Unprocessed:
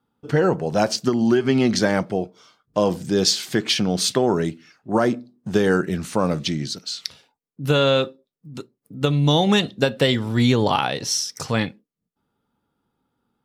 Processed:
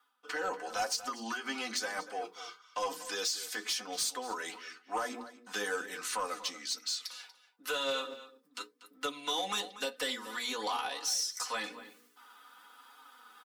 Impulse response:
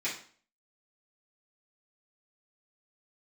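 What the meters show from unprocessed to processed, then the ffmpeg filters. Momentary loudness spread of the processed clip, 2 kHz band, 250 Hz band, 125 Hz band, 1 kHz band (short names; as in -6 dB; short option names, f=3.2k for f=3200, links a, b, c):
14 LU, -9.5 dB, -26.0 dB, under -40 dB, -10.0 dB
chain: -filter_complex "[0:a]highpass=f=350:w=0.5412,highpass=f=350:w=1.3066,lowshelf=f=790:t=q:w=1.5:g=-13.5,bandreject=f=60:t=h:w=6,bandreject=f=120:t=h:w=6,bandreject=f=180:t=h:w=6,bandreject=f=240:t=h:w=6,bandreject=f=300:t=h:w=6,bandreject=f=360:t=h:w=6,bandreject=f=420:t=h:w=6,bandreject=f=480:t=h:w=6,aecho=1:1:4:0.84,acrossover=split=710|5600[a][b][c];[b]acompressor=threshold=-35dB:ratio=6[d];[a][d][c]amix=inputs=3:normalize=0,alimiter=limit=-17.5dB:level=0:latency=1:release=392,areverse,acompressor=mode=upward:threshold=-36dB:ratio=2.5,areverse,flanger=delay=6.4:depth=4.5:regen=32:speed=1:shape=triangular,asoftclip=type=tanh:threshold=-27.5dB,asplit=2[e][f];[f]adelay=239.1,volume=-14dB,highshelf=f=4k:g=-5.38[g];[e][g]amix=inputs=2:normalize=0,volume=2dB"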